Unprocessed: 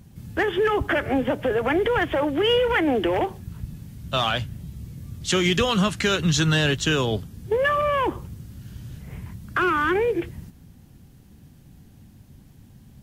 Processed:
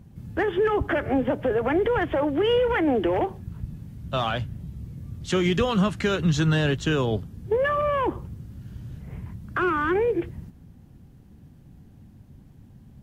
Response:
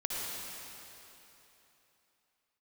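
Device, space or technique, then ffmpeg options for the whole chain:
through cloth: -af "highshelf=frequency=2100:gain=-11"

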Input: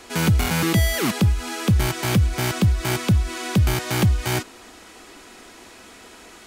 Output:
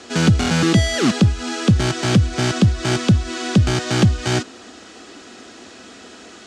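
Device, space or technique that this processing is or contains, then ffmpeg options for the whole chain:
car door speaker: -af "highpass=90,equalizer=frequency=250:width_type=q:width=4:gain=4,equalizer=frequency=960:width_type=q:width=4:gain=-7,equalizer=frequency=2200:width_type=q:width=4:gain=-6,lowpass=frequency=7500:width=0.5412,lowpass=frequency=7500:width=1.3066,volume=5dB"

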